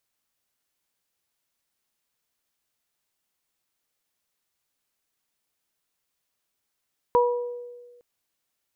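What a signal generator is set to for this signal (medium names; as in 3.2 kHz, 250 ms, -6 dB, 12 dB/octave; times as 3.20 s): additive tone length 0.86 s, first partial 485 Hz, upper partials 0 dB, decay 1.47 s, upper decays 0.60 s, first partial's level -16.5 dB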